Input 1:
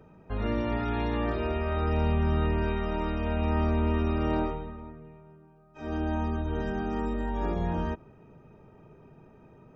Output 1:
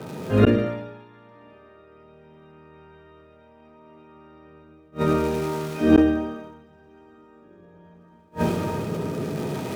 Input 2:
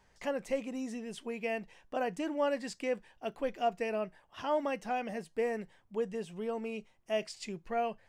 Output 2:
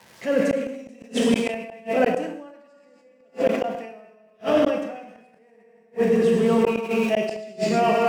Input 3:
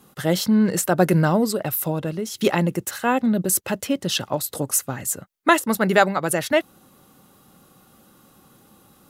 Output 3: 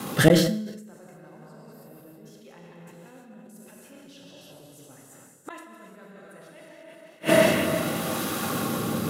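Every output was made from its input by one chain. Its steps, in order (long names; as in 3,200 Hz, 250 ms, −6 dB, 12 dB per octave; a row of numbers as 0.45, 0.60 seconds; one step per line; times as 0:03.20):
surface crackle 260 per second −47 dBFS
high-pass filter 100 Hz 24 dB per octave
rotating-speaker cabinet horn 0.7 Hz
low-shelf EQ 260 Hz −2 dB
on a send: delay that swaps between a low-pass and a high-pass 179 ms, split 2,100 Hz, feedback 55%, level −6.5 dB
on the sum: transient designer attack −6 dB, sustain +1 dB
reverb whose tail is shaped and stops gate 360 ms flat, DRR −3.5 dB
reversed playback
downward compressor 16 to 1, threshold −26 dBFS
reversed playback
gate with flip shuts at −27 dBFS, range −41 dB
high-shelf EQ 4,800 Hz −5 dB
level that may fall only so fast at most 57 dB per second
loudness normalisation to −23 LKFS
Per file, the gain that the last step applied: +22.0, +18.0, +23.0 decibels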